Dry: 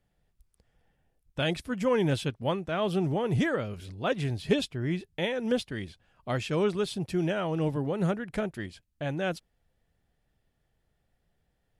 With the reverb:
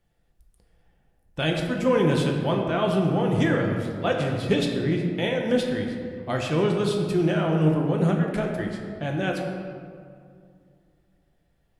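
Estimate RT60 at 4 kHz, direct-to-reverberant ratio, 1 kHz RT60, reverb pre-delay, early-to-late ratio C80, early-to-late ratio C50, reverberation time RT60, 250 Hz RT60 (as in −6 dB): 1.1 s, 0.5 dB, 2.1 s, 3 ms, 4.5 dB, 3.5 dB, 2.3 s, 2.8 s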